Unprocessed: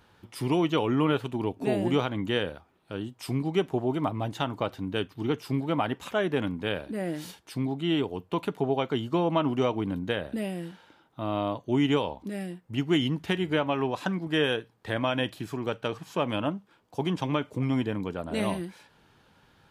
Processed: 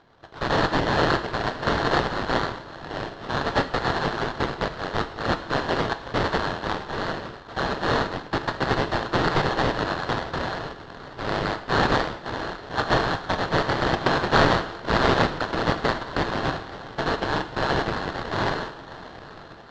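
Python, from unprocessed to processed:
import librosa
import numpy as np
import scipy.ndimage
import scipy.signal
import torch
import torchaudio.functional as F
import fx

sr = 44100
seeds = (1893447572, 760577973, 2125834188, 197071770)

y = fx.band_swap(x, sr, width_hz=4000)
y = fx.high_shelf(y, sr, hz=2700.0, db=6.5, at=(13.86, 16.17))
y = fx.echo_swing(y, sr, ms=902, ratio=1.5, feedback_pct=53, wet_db=-17.0)
y = fx.sample_hold(y, sr, seeds[0], rate_hz=2500.0, jitter_pct=20)
y = scipy.signal.sosfilt(scipy.signal.butter(4, 4700.0, 'lowpass', fs=sr, output='sos'), y)
y = fx.rev_gated(y, sr, seeds[1], gate_ms=250, shape='falling', drr_db=9.0)
y = y * librosa.db_to_amplitude(2.5)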